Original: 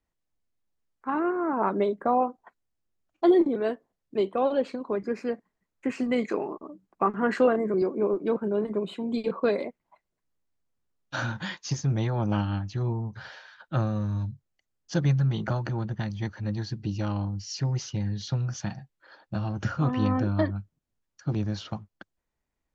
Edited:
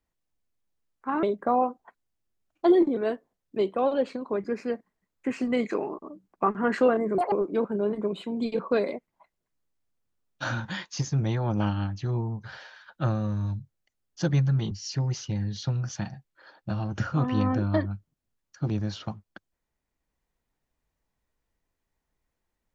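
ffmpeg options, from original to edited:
-filter_complex "[0:a]asplit=5[a][b][c][d][e];[a]atrim=end=1.232[f];[b]atrim=start=1.818:end=7.774[g];[c]atrim=start=7.77:end=8.04,asetpts=PTS-STARTPTS,asetrate=84231,aresample=44100,atrim=end_sample=6234,asetpts=PTS-STARTPTS[h];[d]atrim=start=8.036:end=15.432[i];[e]atrim=start=17.358[j];[f][g]acrossfade=d=0.004:c1=hsin:c2=hsin[k];[k][h]acrossfade=d=0.004:c1=hsin:c2=hsin[l];[l][i]acrossfade=d=0.004:c1=hsin:c2=hsin[m];[m][j]acrossfade=d=0.004:c1=hsin:c2=hsin"

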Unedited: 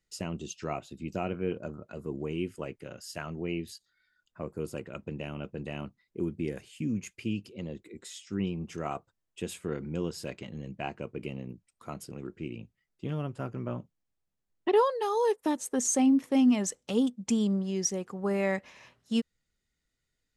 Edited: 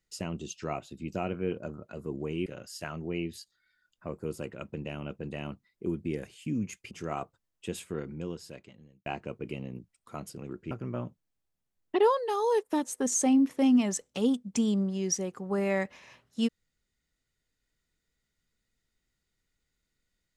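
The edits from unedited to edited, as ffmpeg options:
-filter_complex "[0:a]asplit=5[a][b][c][d][e];[a]atrim=end=2.462[f];[b]atrim=start=2.798:end=7.252[g];[c]atrim=start=8.648:end=10.8,asetpts=PTS-STARTPTS,afade=t=out:st=0.842:d=1.31[h];[d]atrim=start=10.8:end=12.452,asetpts=PTS-STARTPTS,afade=t=in:d=0.004:c=hsin[i];[e]atrim=start=13.438[j];[f][g]acrossfade=d=0.004:c1=hsin:c2=hsin[k];[h][i]concat=n=2:v=0:a=1[l];[k][l]acrossfade=d=0.004:c1=hsin:c2=hsin[m];[m][j]acrossfade=d=0.004:c1=hsin:c2=hsin"

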